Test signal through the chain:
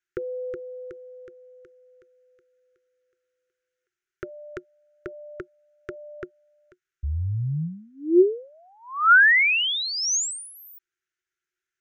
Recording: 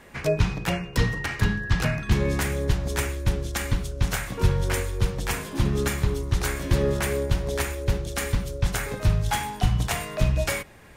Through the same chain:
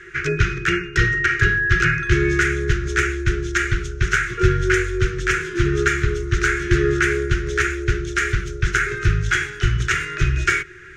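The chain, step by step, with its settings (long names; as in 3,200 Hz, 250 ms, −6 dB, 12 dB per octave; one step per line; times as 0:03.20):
drawn EQ curve 160 Hz 0 dB, 250 Hz −29 dB, 360 Hz +15 dB, 570 Hz −25 dB, 870 Hz −29 dB, 1,400 Hz +14 dB, 4,500 Hz −4 dB, 6,400 Hz +4 dB, 11,000 Hz −20 dB
level +3 dB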